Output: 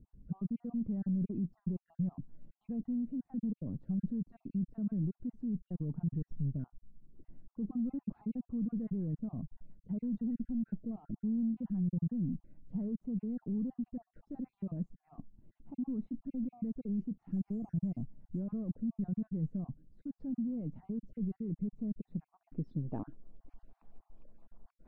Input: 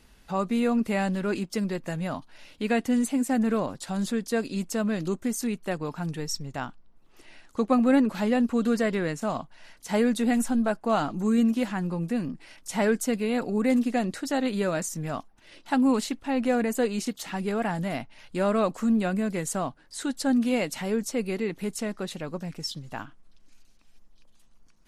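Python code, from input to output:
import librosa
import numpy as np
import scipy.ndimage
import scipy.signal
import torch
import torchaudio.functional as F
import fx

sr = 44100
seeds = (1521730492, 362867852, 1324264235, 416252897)

p1 = fx.spec_dropout(x, sr, seeds[0], share_pct=32)
p2 = fx.over_compress(p1, sr, threshold_db=-33.0, ratio=-1.0)
p3 = p1 + (p2 * 10.0 ** (2.5 / 20.0))
p4 = 10.0 ** (-18.0 / 20.0) * np.tanh(p3 / 10.0 ** (-18.0 / 20.0))
p5 = fx.filter_sweep_lowpass(p4, sr, from_hz=180.0, to_hz=750.0, start_s=22.23, end_s=23.55, q=1.2)
p6 = fx.resample_linear(p5, sr, factor=6, at=(17.31, 18.4))
y = p6 * 10.0 ** (-7.5 / 20.0)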